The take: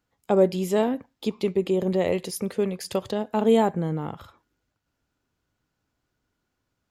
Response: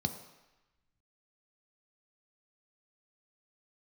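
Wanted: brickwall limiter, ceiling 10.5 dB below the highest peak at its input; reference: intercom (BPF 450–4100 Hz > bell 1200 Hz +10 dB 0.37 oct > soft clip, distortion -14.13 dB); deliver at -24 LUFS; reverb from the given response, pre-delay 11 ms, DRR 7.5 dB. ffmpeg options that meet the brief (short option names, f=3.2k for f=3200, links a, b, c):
-filter_complex "[0:a]alimiter=limit=-18.5dB:level=0:latency=1,asplit=2[a][b];[1:a]atrim=start_sample=2205,adelay=11[c];[b][c]afir=irnorm=-1:irlink=0,volume=-10.5dB[d];[a][d]amix=inputs=2:normalize=0,highpass=450,lowpass=4.1k,equalizer=f=1.2k:t=o:w=0.37:g=10,asoftclip=threshold=-25dB,volume=10.5dB"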